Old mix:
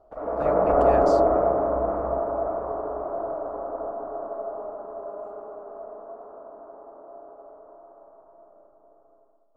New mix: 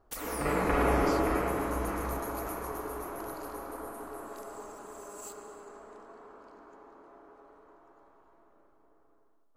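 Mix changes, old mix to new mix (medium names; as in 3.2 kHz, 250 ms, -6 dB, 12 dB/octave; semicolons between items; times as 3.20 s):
background: remove resonant low-pass 640 Hz, resonance Q 7.2; master: add peaking EQ 1.3 kHz -11 dB 0.83 oct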